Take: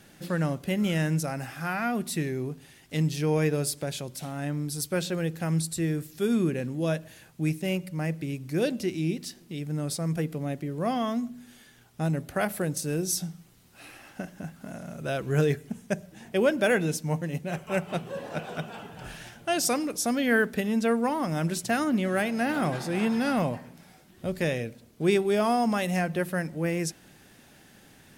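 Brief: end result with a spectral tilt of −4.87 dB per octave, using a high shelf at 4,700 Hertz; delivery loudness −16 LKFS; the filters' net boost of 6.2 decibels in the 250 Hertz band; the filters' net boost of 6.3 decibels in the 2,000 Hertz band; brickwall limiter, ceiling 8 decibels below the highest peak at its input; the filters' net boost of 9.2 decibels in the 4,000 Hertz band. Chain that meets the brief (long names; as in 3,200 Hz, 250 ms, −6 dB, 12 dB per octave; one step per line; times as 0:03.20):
parametric band 250 Hz +8 dB
parametric band 2,000 Hz +5.5 dB
parametric band 4,000 Hz +9 dB
high-shelf EQ 4,700 Hz +3 dB
level +9 dB
brickwall limiter −5 dBFS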